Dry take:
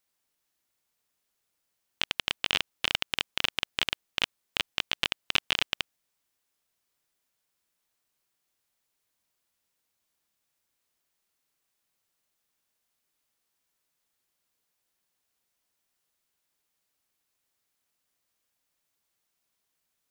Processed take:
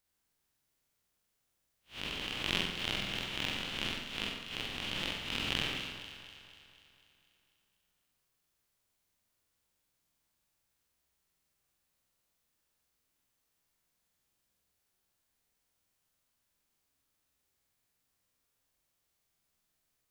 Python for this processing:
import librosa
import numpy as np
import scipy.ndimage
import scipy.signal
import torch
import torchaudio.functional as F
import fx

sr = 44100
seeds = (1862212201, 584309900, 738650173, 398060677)

p1 = fx.spec_blur(x, sr, span_ms=138.0)
p2 = fx.low_shelf(p1, sr, hz=180.0, db=10.5)
p3 = p2 + fx.echo_alternate(p2, sr, ms=123, hz=1900.0, feedback_pct=75, wet_db=-8.0, dry=0)
p4 = fx.dynamic_eq(p3, sr, hz=250.0, q=0.91, threshold_db=-60.0, ratio=4.0, max_db=7)
p5 = fx.room_flutter(p4, sr, wall_m=8.0, rt60_s=0.58)
y = F.gain(torch.from_numpy(p5), -1.5).numpy()